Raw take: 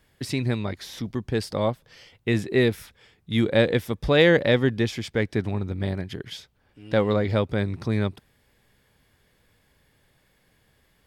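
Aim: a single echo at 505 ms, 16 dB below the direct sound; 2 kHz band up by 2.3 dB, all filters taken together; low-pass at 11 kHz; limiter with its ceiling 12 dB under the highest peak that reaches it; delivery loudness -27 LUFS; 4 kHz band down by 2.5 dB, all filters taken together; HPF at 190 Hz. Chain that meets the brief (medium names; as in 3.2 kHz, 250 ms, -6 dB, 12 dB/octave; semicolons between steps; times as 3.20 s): high-pass 190 Hz; low-pass 11 kHz; peaking EQ 2 kHz +3.5 dB; peaking EQ 4 kHz -4 dB; peak limiter -16.5 dBFS; delay 505 ms -16 dB; trim +3.5 dB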